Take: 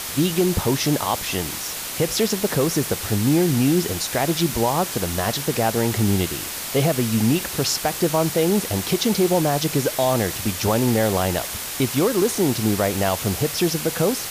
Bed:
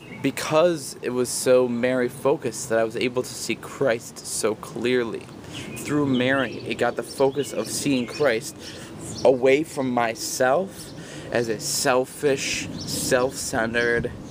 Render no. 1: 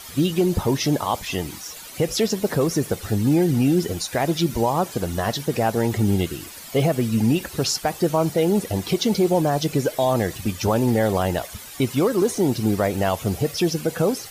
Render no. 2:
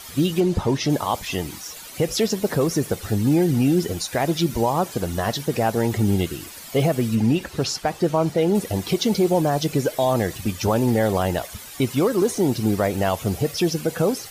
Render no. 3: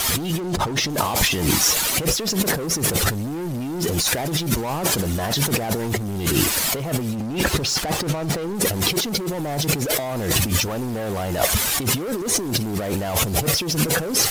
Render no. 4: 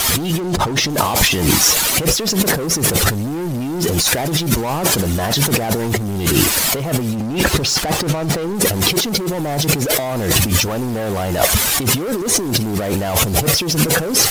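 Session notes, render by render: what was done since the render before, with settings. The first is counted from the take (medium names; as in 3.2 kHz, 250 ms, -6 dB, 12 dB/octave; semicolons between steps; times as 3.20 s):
noise reduction 13 dB, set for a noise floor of -30 dBFS
0.40–0.90 s: distance through air 50 m; 7.15–8.55 s: treble shelf 8.3 kHz -11.5 dB
waveshaping leveller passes 3; compressor with a negative ratio -23 dBFS, ratio -1
trim +5 dB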